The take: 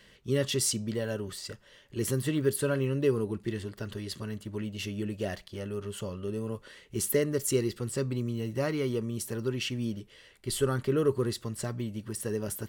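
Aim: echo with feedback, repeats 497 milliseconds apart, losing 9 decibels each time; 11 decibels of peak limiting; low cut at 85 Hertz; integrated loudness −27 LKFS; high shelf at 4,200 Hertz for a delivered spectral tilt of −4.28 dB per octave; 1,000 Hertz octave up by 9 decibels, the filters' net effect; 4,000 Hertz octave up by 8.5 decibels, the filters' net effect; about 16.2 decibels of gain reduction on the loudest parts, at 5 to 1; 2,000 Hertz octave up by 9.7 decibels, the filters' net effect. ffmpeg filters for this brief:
ffmpeg -i in.wav -af "highpass=85,equalizer=frequency=1000:width_type=o:gain=8.5,equalizer=frequency=2000:width_type=o:gain=7,equalizer=frequency=4000:width_type=o:gain=4,highshelf=frequency=4200:gain=7.5,acompressor=threshold=-38dB:ratio=5,alimiter=level_in=11.5dB:limit=-24dB:level=0:latency=1,volume=-11.5dB,aecho=1:1:497|994|1491|1988:0.355|0.124|0.0435|0.0152,volume=17.5dB" out.wav

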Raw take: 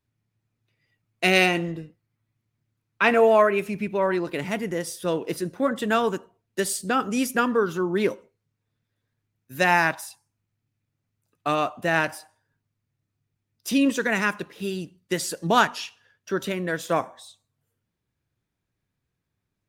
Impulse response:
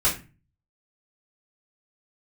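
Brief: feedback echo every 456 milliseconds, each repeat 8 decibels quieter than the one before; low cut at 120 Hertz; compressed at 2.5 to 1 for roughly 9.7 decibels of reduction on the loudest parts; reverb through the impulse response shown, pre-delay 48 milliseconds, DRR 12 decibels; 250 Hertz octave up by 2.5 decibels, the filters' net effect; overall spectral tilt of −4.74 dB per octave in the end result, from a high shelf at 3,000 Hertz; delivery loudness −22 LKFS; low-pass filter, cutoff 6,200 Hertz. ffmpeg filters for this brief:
-filter_complex "[0:a]highpass=120,lowpass=6200,equalizer=frequency=250:width_type=o:gain=3.5,highshelf=frequency=3000:gain=-7,acompressor=threshold=-28dB:ratio=2.5,aecho=1:1:456|912|1368|1824|2280:0.398|0.159|0.0637|0.0255|0.0102,asplit=2[link_01][link_02];[1:a]atrim=start_sample=2205,adelay=48[link_03];[link_02][link_03]afir=irnorm=-1:irlink=0,volume=-25dB[link_04];[link_01][link_04]amix=inputs=2:normalize=0,volume=8.5dB"

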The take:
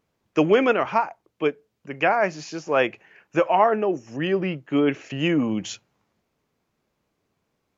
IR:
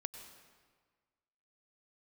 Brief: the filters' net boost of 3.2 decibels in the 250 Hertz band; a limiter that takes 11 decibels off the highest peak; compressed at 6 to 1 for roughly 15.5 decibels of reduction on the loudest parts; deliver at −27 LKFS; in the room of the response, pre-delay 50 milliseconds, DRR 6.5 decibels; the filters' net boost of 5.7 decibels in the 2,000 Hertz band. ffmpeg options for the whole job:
-filter_complex "[0:a]equalizer=frequency=250:width_type=o:gain=4,equalizer=frequency=2000:width_type=o:gain=7.5,acompressor=threshold=-29dB:ratio=6,alimiter=level_in=0.5dB:limit=-24dB:level=0:latency=1,volume=-0.5dB,asplit=2[link_01][link_02];[1:a]atrim=start_sample=2205,adelay=50[link_03];[link_02][link_03]afir=irnorm=-1:irlink=0,volume=-4.5dB[link_04];[link_01][link_04]amix=inputs=2:normalize=0,volume=8dB"

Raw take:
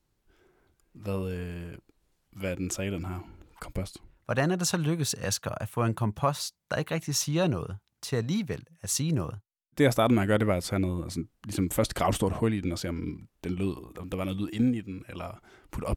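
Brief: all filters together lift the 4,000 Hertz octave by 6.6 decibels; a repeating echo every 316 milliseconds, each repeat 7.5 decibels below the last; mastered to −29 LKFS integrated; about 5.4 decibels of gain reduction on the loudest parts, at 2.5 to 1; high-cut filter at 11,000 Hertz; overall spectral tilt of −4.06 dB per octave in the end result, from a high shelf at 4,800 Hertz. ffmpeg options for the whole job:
ffmpeg -i in.wav -af "lowpass=11000,equalizer=frequency=4000:width_type=o:gain=4,highshelf=frequency=4800:gain=8,acompressor=threshold=-26dB:ratio=2.5,aecho=1:1:316|632|948|1264|1580:0.422|0.177|0.0744|0.0312|0.0131,volume=1.5dB" out.wav

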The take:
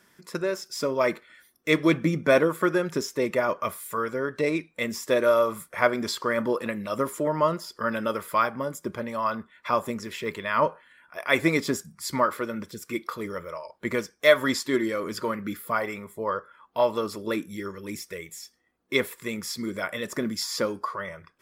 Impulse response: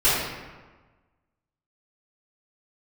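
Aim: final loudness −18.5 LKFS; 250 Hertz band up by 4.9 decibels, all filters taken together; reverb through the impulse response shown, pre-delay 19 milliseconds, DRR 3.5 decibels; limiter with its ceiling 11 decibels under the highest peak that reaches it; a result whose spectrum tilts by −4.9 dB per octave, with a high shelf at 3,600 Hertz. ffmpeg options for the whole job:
-filter_complex "[0:a]equalizer=frequency=250:width_type=o:gain=6.5,highshelf=frequency=3600:gain=-3.5,alimiter=limit=-15dB:level=0:latency=1,asplit=2[link_01][link_02];[1:a]atrim=start_sample=2205,adelay=19[link_03];[link_02][link_03]afir=irnorm=-1:irlink=0,volume=-22dB[link_04];[link_01][link_04]amix=inputs=2:normalize=0,volume=8dB"

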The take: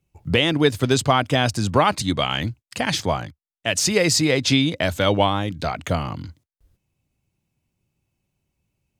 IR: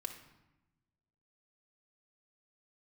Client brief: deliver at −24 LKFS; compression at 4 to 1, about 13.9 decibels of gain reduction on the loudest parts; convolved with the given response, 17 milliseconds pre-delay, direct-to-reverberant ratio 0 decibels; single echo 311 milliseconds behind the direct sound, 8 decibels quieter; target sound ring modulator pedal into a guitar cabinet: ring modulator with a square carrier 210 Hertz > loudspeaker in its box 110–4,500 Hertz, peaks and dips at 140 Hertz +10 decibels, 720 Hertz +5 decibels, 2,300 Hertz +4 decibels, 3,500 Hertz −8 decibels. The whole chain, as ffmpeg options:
-filter_complex "[0:a]acompressor=threshold=-30dB:ratio=4,aecho=1:1:311:0.398,asplit=2[link_01][link_02];[1:a]atrim=start_sample=2205,adelay=17[link_03];[link_02][link_03]afir=irnorm=-1:irlink=0,volume=2dB[link_04];[link_01][link_04]amix=inputs=2:normalize=0,aeval=exprs='val(0)*sgn(sin(2*PI*210*n/s))':channel_layout=same,highpass=110,equalizer=frequency=140:width_type=q:width=4:gain=10,equalizer=frequency=720:width_type=q:width=4:gain=5,equalizer=frequency=2300:width_type=q:width=4:gain=4,equalizer=frequency=3500:width_type=q:width=4:gain=-8,lowpass=frequency=4500:width=0.5412,lowpass=frequency=4500:width=1.3066,volume=5dB"

